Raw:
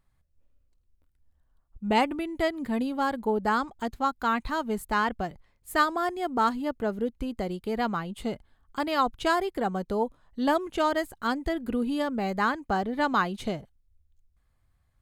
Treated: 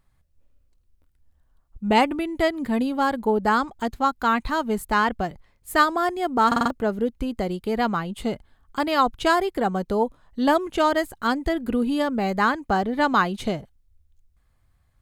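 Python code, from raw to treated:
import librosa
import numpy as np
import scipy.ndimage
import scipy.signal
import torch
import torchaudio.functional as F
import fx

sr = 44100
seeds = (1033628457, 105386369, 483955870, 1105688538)

y = fx.buffer_glitch(x, sr, at_s=(6.47,), block=2048, repeats=4)
y = y * 10.0 ** (5.0 / 20.0)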